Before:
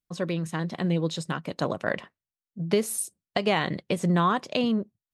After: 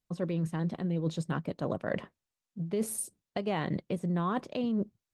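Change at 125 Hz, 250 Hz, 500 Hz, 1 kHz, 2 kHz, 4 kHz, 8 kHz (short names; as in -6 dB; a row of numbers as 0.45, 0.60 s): -3.5, -4.5, -6.5, -9.0, -10.5, -13.0, -6.0 dB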